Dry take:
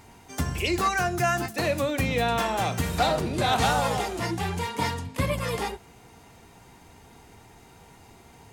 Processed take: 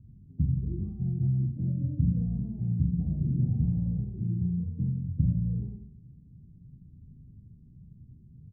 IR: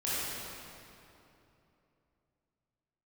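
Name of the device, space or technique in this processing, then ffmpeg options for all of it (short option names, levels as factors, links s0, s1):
the neighbour's flat through the wall: -af "lowpass=f=200:w=0.5412,lowpass=f=200:w=1.3066,lowpass=1400,equalizer=f=140:t=o:w=0.71:g=6,aecho=1:1:40|84|132.4|185.6|244.2:0.631|0.398|0.251|0.158|0.1"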